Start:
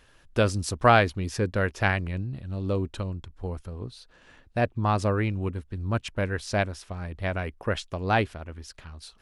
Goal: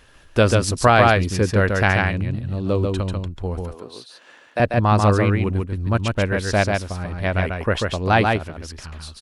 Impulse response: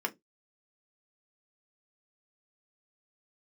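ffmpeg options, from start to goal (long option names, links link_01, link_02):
-filter_complex "[0:a]asettb=1/sr,asplit=3[link_01][link_02][link_03];[link_01]atrim=end=3.604[link_04];[link_02]atrim=start=3.6:end=4.6,asetpts=PTS-STARTPTS,afade=type=in:duration=0.004:curve=qsin,afade=type=out:start_time=0.996:duration=0.004:curve=qsin,highpass=400[link_05];[link_03]atrim=start=4.596[link_06];[link_04][link_05]acrossfade=duration=0.004:curve1=hsin:curve2=qsin[link_07];[link_07][link_06]acrossfade=duration=0.004:curve1=qsin:curve2=hsin,asplit=2[link_08][link_09];[link_09]aecho=0:1:141:0.668[link_10];[link_08][link_10]amix=inputs=2:normalize=0,alimiter=level_in=7.5dB:limit=-1dB:release=50:level=0:latency=1,volume=-1dB"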